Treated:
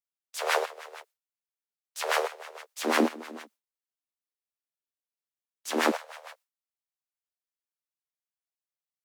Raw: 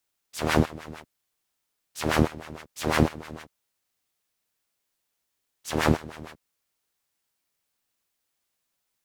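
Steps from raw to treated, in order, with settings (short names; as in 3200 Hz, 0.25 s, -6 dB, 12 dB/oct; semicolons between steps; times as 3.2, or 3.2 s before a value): steep high-pass 430 Hz 72 dB/oct, from 2.83 s 220 Hz, from 5.9 s 510 Hz; gate with hold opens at -41 dBFS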